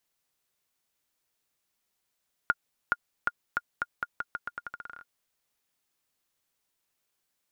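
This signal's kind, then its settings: bouncing ball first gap 0.42 s, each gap 0.84, 1.42 kHz, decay 40 ms -10.5 dBFS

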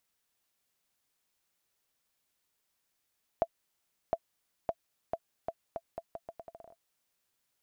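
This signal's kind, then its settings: bouncing ball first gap 0.71 s, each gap 0.79, 669 Hz, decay 54 ms -15.5 dBFS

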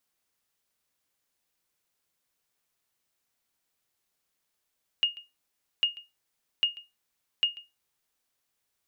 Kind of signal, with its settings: sonar ping 2.85 kHz, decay 0.21 s, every 0.80 s, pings 4, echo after 0.14 s, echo -20.5 dB -16 dBFS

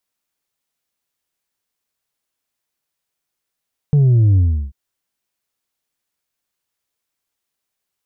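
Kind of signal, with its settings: sub drop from 150 Hz, over 0.79 s, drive 3 dB, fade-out 0.35 s, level -9.5 dB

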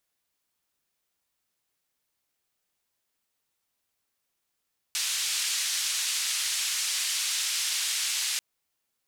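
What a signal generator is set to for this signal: noise band 2.4–7.9 kHz, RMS -29 dBFS 3.44 s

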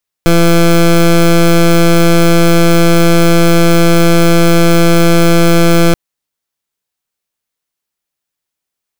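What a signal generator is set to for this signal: pulse 169 Hz, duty 18% -6.5 dBFS 5.68 s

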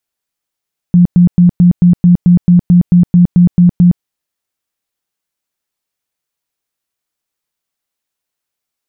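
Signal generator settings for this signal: tone bursts 176 Hz, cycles 20, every 0.22 s, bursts 14, -2.5 dBFS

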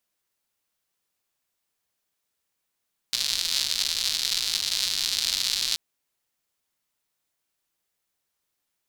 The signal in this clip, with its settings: rain from filtered ticks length 2.63 s, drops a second 190, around 4.2 kHz, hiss -22.5 dB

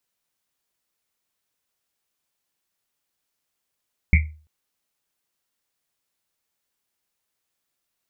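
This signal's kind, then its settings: Risset drum length 0.34 s, pitch 77 Hz, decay 0.40 s, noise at 2.2 kHz, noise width 330 Hz, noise 30%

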